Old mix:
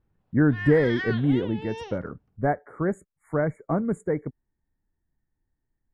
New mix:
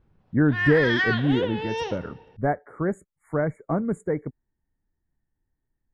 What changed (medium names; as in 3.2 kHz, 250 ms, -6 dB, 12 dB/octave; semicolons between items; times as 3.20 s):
background +7.5 dB; reverb: on, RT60 2.3 s